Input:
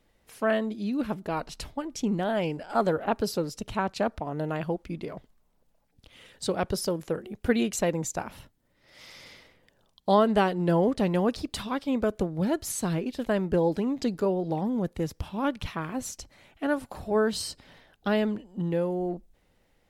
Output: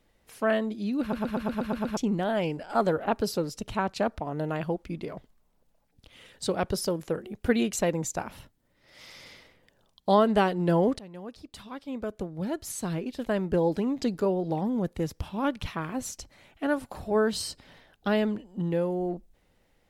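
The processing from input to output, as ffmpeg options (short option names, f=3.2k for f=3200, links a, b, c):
-filter_complex "[0:a]asplit=10[a][b][c][d][e][f][g][h][i][j];[a]atrim=end=1.132[k];[b]atrim=start=1.008:end=1.132[l];[c]atrim=start=1.008:end=1.132[m];[d]atrim=start=1.008:end=1.132[n];[e]atrim=start=1.008:end=1.132[o];[f]atrim=start=1.008:end=1.132[p];[g]atrim=start=1.008:end=1.132[q];[h]atrim=start=1.008:end=1.132[r];[i]atrim=start=1.968:end=10.99,asetpts=PTS-STARTPTS,afade=t=out:st=9.018:d=0.004:c=hsin:silence=0.0794328[s];[j]atrim=start=10.99,asetpts=PTS-STARTPTS,afade=t=in:d=2.82:silence=0.0794328[t];[k][l]acrossfade=d=0.004:c1=hsin:c2=hsin[u];[u][m]acrossfade=d=0.004:c1=hsin:c2=hsin[v];[v][n]acrossfade=d=0.004:c1=hsin:c2=hsin[w];[w][o]acrossfade=d=0.004:c1=hsin:c2=hsin[x];[x][p]acrossfade=d=0.004:c1=hsin:c2=hsin[y];[y][q]acrossfade=d=0.004:c1=hsin:c2=hsin[z];[z][r]acrossfade=d=0.004:c1=hsin:c2=hsin[aa];[s][t]concat=n=2:v=0:a=1[ab];[aa][ab]acrossfade=d=0.004:c1=hsin:c2=hsin"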